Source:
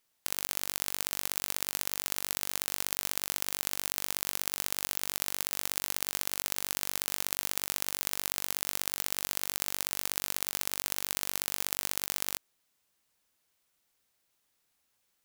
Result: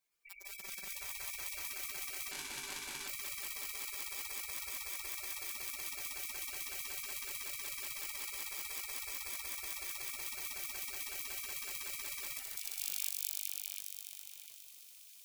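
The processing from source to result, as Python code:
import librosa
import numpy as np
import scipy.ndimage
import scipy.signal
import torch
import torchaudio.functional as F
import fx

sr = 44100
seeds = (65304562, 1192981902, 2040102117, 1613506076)

p1 = fx.highpass(x, sr, hz=48.0, slope=6)
p2 = fx.low_shelf(p1, sr, hz=220.0, db=4.5)
p3 = fx.notch(p2, sr, hz=2300.0, q=6.2)
p4 = fx.echo_split(p3, sr, split_hz=2100.0, low_ms=712, high_ms=205, feedback_pct=52, wet_db=-7)
p5 = np.sign(p4) * np.maximum(np.abs(p4) - 10.0 ** (-48.5 / 20.0), 0.0)
p6 = p4 + (p5 * librosa.db_to_amplitude(-4.5))
p7 = fx.spec_gate(p6, sr, threshold_db=-15, keep='weak')
p8 = fx.echo_wet_highpass(p7, sr, ms=205, feedback_pct=65, hz=4400.0, wet_db=-3.5)
p9 = fx.resample_linear(p8, sr, factor=2, at=(2.31, 3.08))
y = p9 * librosa.db_to_amplitude(13.5)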